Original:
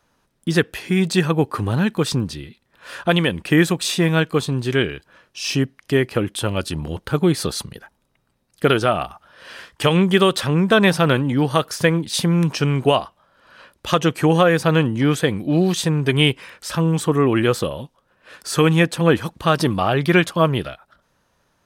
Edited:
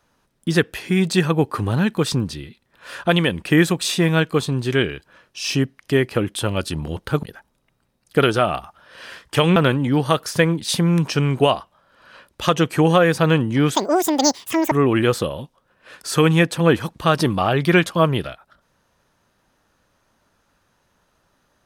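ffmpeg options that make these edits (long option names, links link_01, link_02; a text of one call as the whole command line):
ffmpeg -i in.wav -filter_complex "[0:a]asplit=5[link_01][link_02][link_03][link_04][link_05];[link_01]atrim=end=7.232[link_06];[link_02]atrim=start=7.698:end=10.032[link_07];[link_03]atrim=start=11.008:end=15.204[link_08];[link_04]atrim=start=15.2:end=17.12,asetpts=PTS-STARTPTS,asetrate=87759,aresample=44100[link_09];[link_05]atrim=start=17.116[link_10];[link_06][link_07]acrossfade=duration=0.004:curve1=hsin:curve2=hsin[link_11];[link_11][link_08]acrossfade=duration=0.004:curve1=hsin:curve2=hsin[link_12];[link_12][link_09]acrossfade=duration=0.004:curve1=hsin:curve2=hsin[link_13];[link_13][link_10]acrossfade=duration=0.004:curve1=hsin:curve2=hsin" out.wav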